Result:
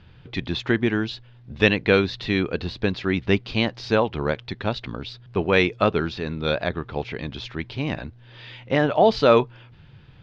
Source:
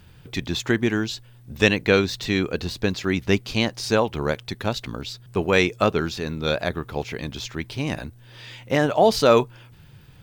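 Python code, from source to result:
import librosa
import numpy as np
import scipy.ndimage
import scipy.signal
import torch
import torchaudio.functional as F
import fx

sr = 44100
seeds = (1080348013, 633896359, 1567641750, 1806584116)

y = scipy.signal.sosfilt(scipy.signal.butter(4, 4200.0, 'lowpass', fs=sr, output='sos'), x)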